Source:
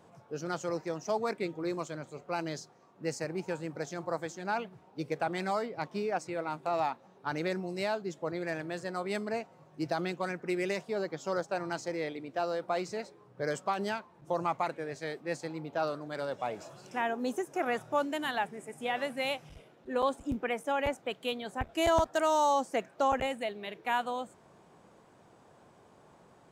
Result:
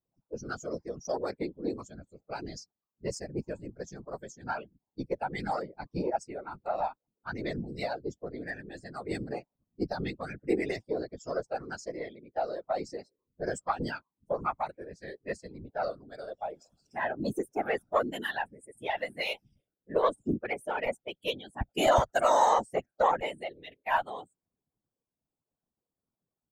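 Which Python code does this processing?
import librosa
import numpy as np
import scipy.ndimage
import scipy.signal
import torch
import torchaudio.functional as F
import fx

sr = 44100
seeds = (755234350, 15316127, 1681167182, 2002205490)

y = fx.bin_expand(x, sr, power=2.0)
y = fx.cheby_harmonics(y, sr, harmonics=(4,), levels_db=(-25,), full_scale_db=-19.0)
y = fx.whisperise(y, sr, seeds[0])
y = F.gain(torch.from_numpy(y), 5.5).numpy()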